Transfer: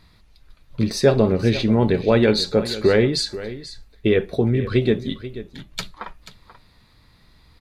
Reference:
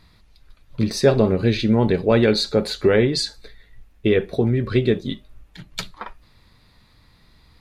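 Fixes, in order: inverse comb 0.485 s -14.5 dB

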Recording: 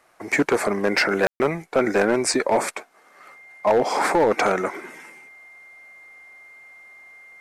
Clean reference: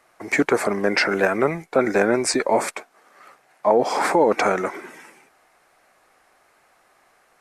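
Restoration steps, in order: clip repair -12 dBFS; notch 2100 Hz, Q 30; room tone fill 1.27–1.4

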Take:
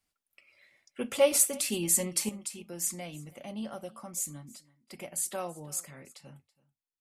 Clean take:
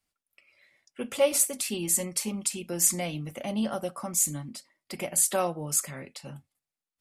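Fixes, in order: inverse comb 0.328 s -22 dB; gain 0 dB, from 2.29 s +9 dB

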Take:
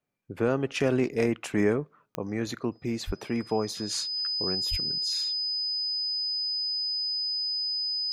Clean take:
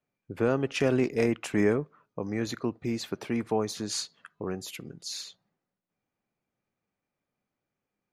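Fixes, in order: de-click; notch 5000 Hz, Q 30; de-plosive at 3.06/4.7

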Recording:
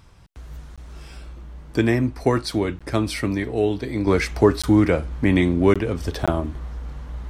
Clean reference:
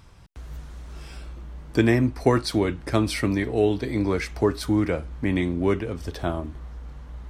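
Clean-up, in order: interpolate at 0.76/2.79/4.62/5.74/6.26, 16 ms; gain 0 dB, from 4.07 s -6 dB

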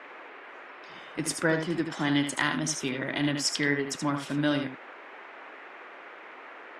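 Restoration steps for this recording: clip repair -10.5 dBFS; noise print and reduce 28 dB; inverse comb 77 ms -7 dB

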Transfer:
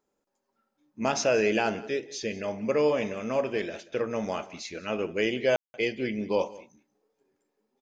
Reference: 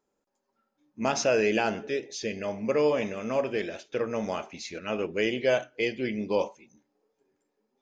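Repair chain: room tone fill 5.56–5.74; inverse comb 0.184 s -20 dB

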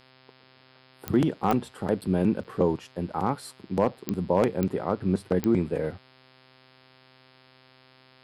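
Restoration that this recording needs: clip repair -12 dBFS; de-click; de-hum 129.9 Hz, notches 40; interpolate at 2.01/2.44, 7.7 ms

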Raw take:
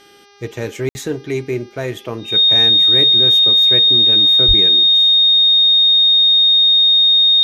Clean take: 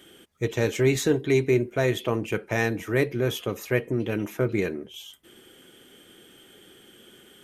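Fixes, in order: de-hum 404.1 Hz, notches 15; notch 3700 Hz, Q 30; 4.47–4.59 HPF 140 Hz 24 dB/oct; room tone fill 0.89–0.95

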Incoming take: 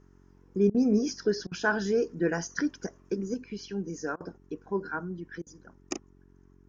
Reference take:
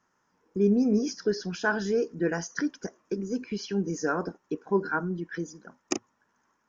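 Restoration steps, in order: de-hum 45.7 Hz, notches 9; interpolate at 0.7/1.47/4.16/5.42, 44 ms; gain correction +5.5 dB, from 3.34

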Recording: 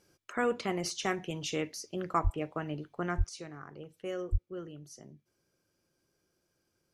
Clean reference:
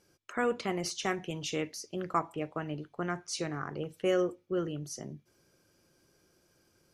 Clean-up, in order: de-plosive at 2.23/3.17/4.31; gain correction +9.5 dB, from 3.29

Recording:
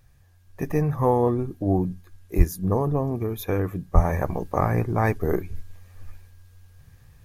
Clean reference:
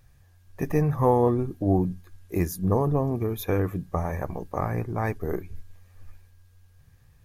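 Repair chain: de-plosive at 2.37/3.94; gain 0 dB, from 3.95 s -5.5 dB

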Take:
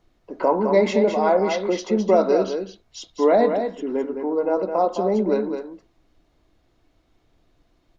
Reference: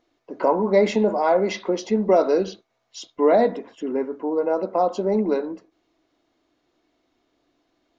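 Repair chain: expander -55 dBFS, range -21 dB; inverse comb 0.212 s -7 dB

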